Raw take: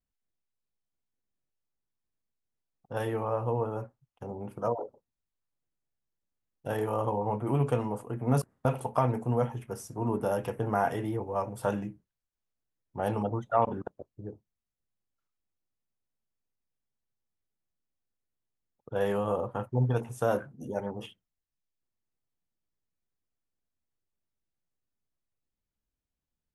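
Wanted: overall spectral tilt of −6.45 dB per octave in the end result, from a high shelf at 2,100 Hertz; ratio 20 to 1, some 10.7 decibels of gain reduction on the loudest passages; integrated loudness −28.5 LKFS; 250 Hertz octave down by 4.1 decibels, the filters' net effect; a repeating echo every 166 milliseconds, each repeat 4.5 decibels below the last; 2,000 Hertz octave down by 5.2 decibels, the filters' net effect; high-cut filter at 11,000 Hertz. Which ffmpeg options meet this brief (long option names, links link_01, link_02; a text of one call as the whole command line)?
ffmpeg -i in.wav -af "lowpass=11000,equalizer=frequency=250:width_type=o:gain=-5.5,equalizer=frequency=2000:width_type=o:gain=-4.5,highshelf=frequency=2100:gain=-5.5,acompressor=threshold=-33dB:ratio=20,aecho=1:1:166|332|498|664|830|996|1162|1328|1494:0.596|0.357|0.214|0.129|0.0772|0.0463|0.0278|0.0167|0.01,volume=10dB" out.wav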